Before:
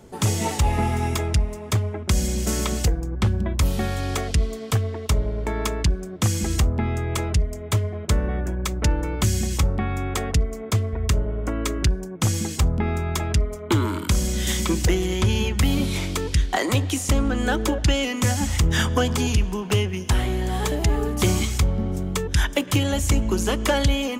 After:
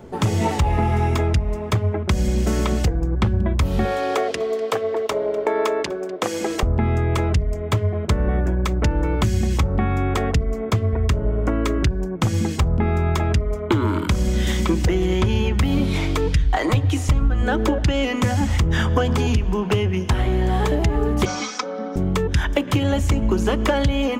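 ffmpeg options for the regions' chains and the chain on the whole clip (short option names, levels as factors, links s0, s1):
-filter_complex "[0:a]asettb=1/sr,asplit=3[s0][s1][s2];[s0]atrim=end=3.854[s3];[s1]atrim=start=3.85:end=6.63,asetpts=PTS-STARTPTS,afade=t=in:d=0.004:c=qsin,afade=t=out:st=2.776:d=0.004:c=qsin,highpass=f=470:t=q:w=1.9,aecho=1:1:248:0.0891,atrim=end_sample=122598[s4];[s2]atrim=start=6.626[s5];[s3][s4]acrossfade=d=0.004:c1=hsin:c2=qsin[s6];[s6][s5]acrossfade=d=0.004:c1=qsin:c2=hsin,asettb=1/sr,asplit=3[s7][s8][s9];[s7]atrim=end=15.924[s10];[s8]atrim=start=15.92:end=17.42,asetpts=PTS-STARTPTS,afade=t=in:d=0.004:c=qsin,afade=t=out:st=1.496:d=0.004:c=qsin,aecho=1:1:6.5:0.37,atrim=end_sample=66150,bandreject=f=61.46:t=h:w=4,bandreject=f=122.92:t=h:w=4,bandreject=f=184.38:t=h:w=4,bandreject=f=245.84:t=h:w=4,bandreject=f=307.3:t=h:w=4,bandreject=f=368.76:t=h:w=4,bandreject=f=430.22:t=h:w=4,bandreject=f=491.68:t=h:w=4,bandreject=f=553.14:t=h:w=4,asubboost=boost=10.5:cutoff=120[s11];[s9]atrim=start=17.416[s12];[s10][s11]acrossfade=d=0.004:c1=hsin:c2=qsin[s13];[s13][s12]acrossfade=d=0.004:c1=qsin:c2=hsin,asettb=1/sr,asplit=3[s14][s15][s16];[s14]atrim=end=21.254[s17];[s15]atrim=start=21.25:end=21.96,asetpts=PTS-STARTPTS,afade=t=in:d=0.004:c=qsin,afade=t=out:st=0.706:d=0.004:c=qsin,highpass=f=350:w=0.5412,highpass=f=350:w=1.3066,equalizer=f=380:t=q:w=4:g=-8,equalizer=f=660:t=q:w=4:g=-6,equalizer=f=1300:t=q:w=4:g=5,equalizer=f=2000:t=q:w=4:g=-5,equalizer=f=2900:t=q:w=4:g=-8,equalizer=f=5700:t=q:w=4:g=9,lowpass=f=6100:w=0.5412,lowpass=f=6100:w=1.3066,aecho=1:1:4:0.92,atrim=end_sample=31311[s18];[s16]atrim=start=21.956[s19];[s17][s18]acrossfade=d=0.004:c1=hsin:c2=qsin[s20];[s20][s19]acrossfade=d=0.004:c1=qsin:c2=hsin,bandreject=f=50:t=h:w=6,bandreject=f=100:t=h:w=6,bandreject=f=150:t=h:w=6,bandreject=f=200:t=h:w=6,bandreject=f=250:t=h:w=6,acompressor=threshold=0.0794:ratio=6,equalizer=f=11000:t=o:w=2.3:g=-14.5,volume=2.37"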